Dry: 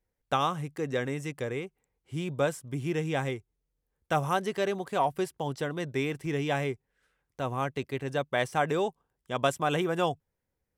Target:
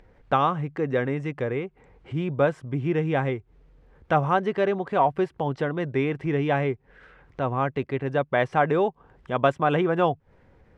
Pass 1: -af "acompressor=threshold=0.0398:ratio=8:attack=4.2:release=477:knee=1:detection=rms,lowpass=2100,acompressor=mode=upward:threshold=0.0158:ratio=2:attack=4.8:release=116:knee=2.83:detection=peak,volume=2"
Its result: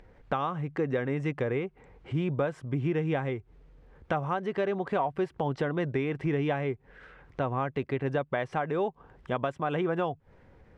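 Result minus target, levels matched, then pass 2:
compression: peak gain reduction +11.5 dB
-af "lowpass=2100,acompressor=mode=upward:threshold=0.0158:ratio=2:attack=4.8:release=116:knee=2.83:detection=peak,volume=2"

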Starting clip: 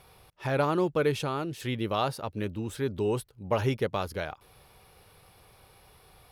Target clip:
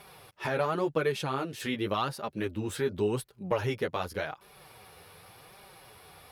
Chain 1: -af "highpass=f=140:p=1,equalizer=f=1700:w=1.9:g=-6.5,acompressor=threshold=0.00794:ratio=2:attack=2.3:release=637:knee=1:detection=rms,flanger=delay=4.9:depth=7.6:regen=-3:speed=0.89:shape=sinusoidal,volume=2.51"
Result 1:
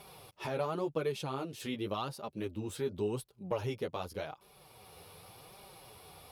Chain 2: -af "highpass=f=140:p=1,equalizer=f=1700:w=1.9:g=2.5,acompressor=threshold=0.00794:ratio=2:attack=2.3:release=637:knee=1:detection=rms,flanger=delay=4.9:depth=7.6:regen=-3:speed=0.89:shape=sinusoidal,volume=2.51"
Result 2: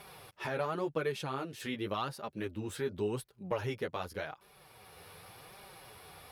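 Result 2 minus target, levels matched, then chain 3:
compression: peak gain reduction +5.5 dB
-af "highpass=f=140:p=1,equalizer=f=1700:w=1.9:g=2.5,acompressor=threshold=0.0282:ratio=2:attack=2.3:release=637:knee=1:detection=rms,flanger=delay=4.9:depth=7.6:regen=-3:speed=0.89:shape=sinusoidal,volume=2.51"

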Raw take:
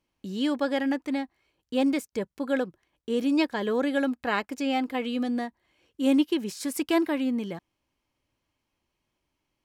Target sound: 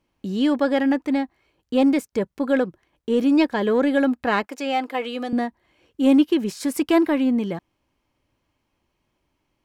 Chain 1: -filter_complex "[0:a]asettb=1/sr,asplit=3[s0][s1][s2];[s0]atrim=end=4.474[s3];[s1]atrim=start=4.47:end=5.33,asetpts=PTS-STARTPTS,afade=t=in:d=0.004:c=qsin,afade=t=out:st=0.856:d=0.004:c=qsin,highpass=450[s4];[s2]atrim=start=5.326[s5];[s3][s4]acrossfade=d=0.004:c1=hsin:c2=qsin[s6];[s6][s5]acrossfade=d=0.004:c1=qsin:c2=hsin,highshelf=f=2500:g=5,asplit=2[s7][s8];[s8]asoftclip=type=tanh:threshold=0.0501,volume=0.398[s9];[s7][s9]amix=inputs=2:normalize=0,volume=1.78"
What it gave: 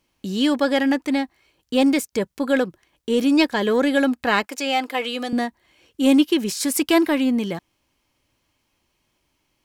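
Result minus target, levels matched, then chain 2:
4 kHz band +6.5 dB
-filter_complex "[0:a]asettb=1/sr,asplit=3[s0][s1][s2];[s0]atrim=end=4.474[s3];[s1]atrim=start=4.47:end=5.33,asetpts=PTS-STARTPTS,afade=t=in:d=0.004:c=qsin,afade=t=out:st=0.856:d=0.004:c=qsin,highpass=450[s4];[s2]atrim=start=5.326[s5];[s3][s4]acrossfade=d=0.004:c1=hsin:c2=qsin[s6];[s6][s5]acrossfade=d=0.004:c1=qsin:c2=hsin,highshelf=f=2500:g=-6.5,asplit=2[s7][s8];[s8]asoftclip=type=tanh:threshold=0.0501,volume=0.398[s9];[s7][s9]amix=inputs=2:normalize=0,volume=1.78"

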